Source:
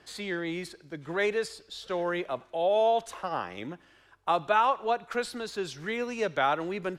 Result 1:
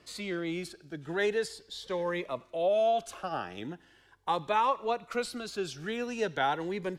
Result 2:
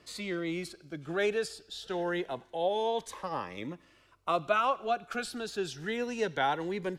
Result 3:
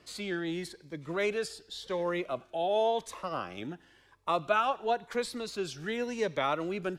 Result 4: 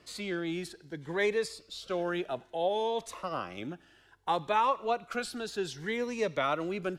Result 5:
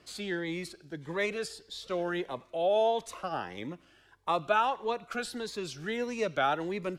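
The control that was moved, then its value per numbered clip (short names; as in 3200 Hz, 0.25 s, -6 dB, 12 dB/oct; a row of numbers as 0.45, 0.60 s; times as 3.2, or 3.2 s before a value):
cascading phaser, rate: 0.4, 0.25, 0.92, 0.62, 1.6 Hz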